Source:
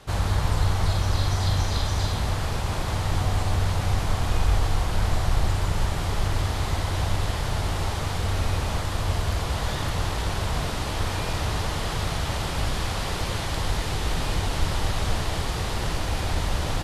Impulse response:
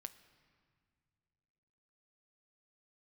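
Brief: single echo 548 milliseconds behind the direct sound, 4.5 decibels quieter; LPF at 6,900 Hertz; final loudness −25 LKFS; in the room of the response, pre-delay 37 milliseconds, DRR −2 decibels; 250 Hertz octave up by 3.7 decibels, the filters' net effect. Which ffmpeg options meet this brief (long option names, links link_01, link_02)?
-filter_complex "[0:a]lowpass=6900,equalizer=frequency=250:width_type=o:gain=5.5,aecho=1:1:548:0.596,asplit=2[link_01][link_02];[1:a]atrim=start_sample=2205,adelay=37[link_03];[link_02][link_03]afir=irnorm=-1:irlink=0,volume=7dB[link_04];[link_01][link_04]amix=inputs=2:normalize=0,volume=-3dB"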